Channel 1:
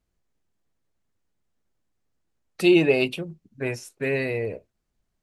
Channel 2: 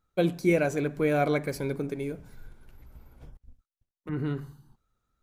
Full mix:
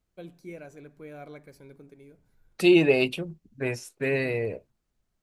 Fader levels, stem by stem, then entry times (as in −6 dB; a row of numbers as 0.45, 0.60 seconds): −1.0, −18.5 decibels; 0.00, 0.00 seconds